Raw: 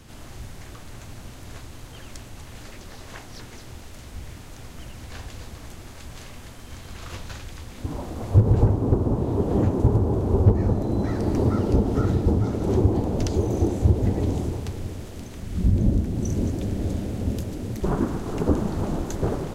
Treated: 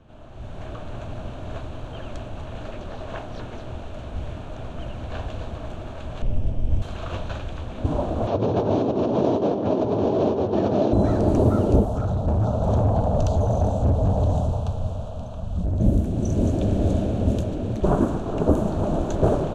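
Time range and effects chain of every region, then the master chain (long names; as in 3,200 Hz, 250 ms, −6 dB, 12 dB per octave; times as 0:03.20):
0:06.22–0:06.82: lower of the sound and its delayed copy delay 0.37 ms + spectral tilt −4 dB per octave + tuned comb filter 100 Hz, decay 0.18 s, mix 40%
0:08.27–0:10.93: linear delta modulator 32 kbit/s, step −37 dBFS + high-pass filter 220 Hz + compressor whose output falls as the input rises −29 dBFS
0:11.85–0:15.80: phaser with its sweep stopped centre 830 Hz, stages 4 + hard clipping −22.5 dBFS
whole clip: low-pass that shuts in the quiet parts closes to 2,500 Hz, open at −15.5 dBFS; automatic gain control; thirty-one-band graphic EQ 630 Hz +10 dB, 2,000 Hz −12 dB, 5,000 Hz −10 dB; level −5 dB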